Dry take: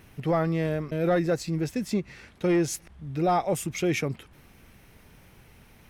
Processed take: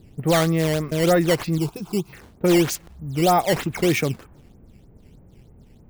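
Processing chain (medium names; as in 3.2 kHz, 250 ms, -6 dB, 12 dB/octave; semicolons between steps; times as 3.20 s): level-controlled noise filter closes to 410 Hz, open at -23 dBFS; decimation with a swept rate 10×, swing 160% 3.2 Hz; 1.58–2.13 s: static phaser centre 370 Hz, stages 8; trim +6 dB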